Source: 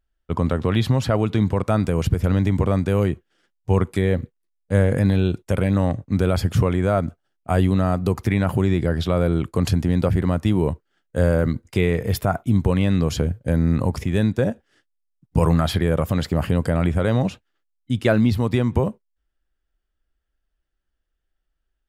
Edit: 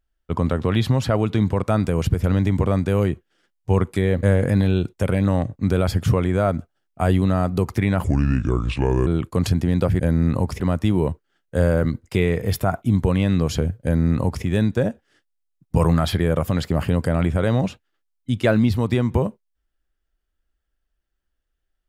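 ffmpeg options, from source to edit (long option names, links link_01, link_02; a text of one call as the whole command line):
ffmpeg -i in.wav -filter_complex "[0:a]asplit=6[link_01][link_02][link_03][link_04][link_05][link_06];[link_01]atrim=end=4.232[link_07];[link_02]atrim=start=4.718:end=8.534[link_08];[link_03]atrim=start=8.53:end=9.28,asetpts=PTS-STARTPTS,asetrate=32193,aresample=44100,atrim=end_sample=45308,asetpts=PTS-STARTPTS[link_09];[link_04]atrim=start=9.276:end=10.212[link_10];[link_05]atrim=start=13.448:end=14.052[link_11];[link_06]atrim=start=10.208[link_12];[link_07][link_08]acrossfade=duration=0.004:curve1=hsin:curve2=hsin[link_13];[link_13][link_09]acrossfade=duration=0.004:curve1=hsin:curve2=hsin[link_14];[link_14][link_10]acrossfade=duration=0.004:curve1=hsin:curve2=hsin[link_15];[link_15][link_11]acrossfade=duration=0.004:curve1=hsin:curve2=hsin[link_16];[link_16][link_12]acrossfade=duration=0.004:curve1=hsin:curve2=hsin" out.wav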